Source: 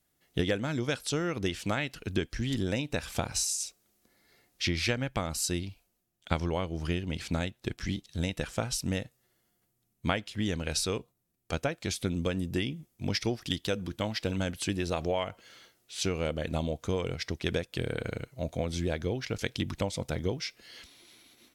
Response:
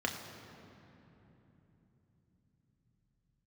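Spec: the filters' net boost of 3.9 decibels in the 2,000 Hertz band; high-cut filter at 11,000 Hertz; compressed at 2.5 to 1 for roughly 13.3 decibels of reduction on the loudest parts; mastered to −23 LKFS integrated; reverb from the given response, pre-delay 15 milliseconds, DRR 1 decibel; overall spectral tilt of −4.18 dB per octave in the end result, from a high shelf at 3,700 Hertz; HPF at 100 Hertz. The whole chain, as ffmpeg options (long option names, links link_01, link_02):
-filter_complex "[0:a]highpass=100,lowpass=11000,equalizer=frequency=2000:width_type=o:gain=4,highshelf=frequency=3700:gain=3,acompressor=threshold=-44dB:ratio=2.5,asplit=2[link_01][link_02];[1:a]atrim=start_sample=2205,adelay=15[link_03];[link_02][link_03]afir=irnorm=-1:irlink=0,volume=-7dB[link_04];[link_01][link_04]amix=inputs=2:normalize=0,volume=17.5dB"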